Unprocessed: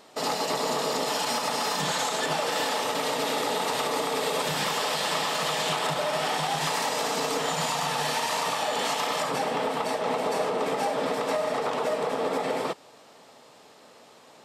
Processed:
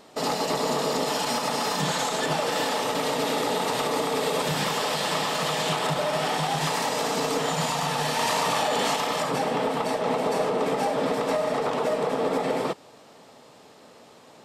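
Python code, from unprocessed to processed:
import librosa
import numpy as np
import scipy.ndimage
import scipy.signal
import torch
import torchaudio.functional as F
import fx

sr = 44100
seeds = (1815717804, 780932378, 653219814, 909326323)

y = fx.low_shelf(x, sr, hz=370.0, db=7.0)
y = fx.env_flatten(y, sr, amount_pct=100, at=(8.19, 8.96))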